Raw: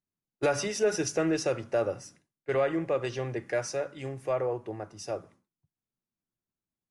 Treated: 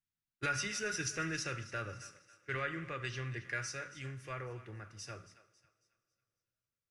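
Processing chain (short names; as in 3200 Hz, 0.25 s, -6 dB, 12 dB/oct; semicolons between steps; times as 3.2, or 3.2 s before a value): EQ curve 120 Hz 0 dB, 750 Hz -20 dB, 1400 Hz +3 dB, 9900 Hz -4 dB; thinning echo 0.274 s, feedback 39%, high-pass 710 Hz, level -15.5 dB; reverb, pre-delay 3 ms, DRR 12 dB; gain -2.5 dB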